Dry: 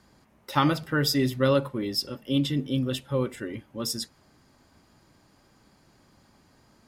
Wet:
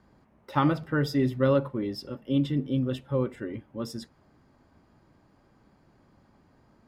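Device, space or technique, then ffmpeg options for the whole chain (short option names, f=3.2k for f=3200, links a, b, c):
through cloth: -af "highshelf=f=3k:g=-17"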